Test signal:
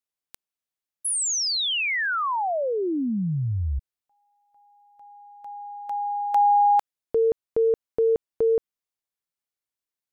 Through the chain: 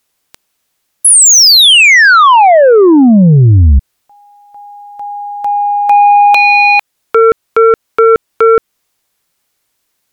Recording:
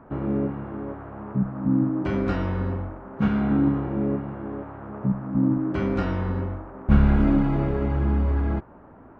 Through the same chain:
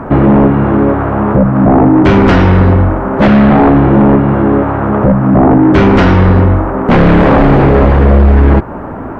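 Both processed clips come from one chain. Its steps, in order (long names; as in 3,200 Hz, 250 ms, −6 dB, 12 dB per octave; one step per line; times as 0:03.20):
in parallel at 0 dB: downward compressor, threshold −29 dBFS
on the sum: sine wavefolder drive 16 dB, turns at −2.5 dBFS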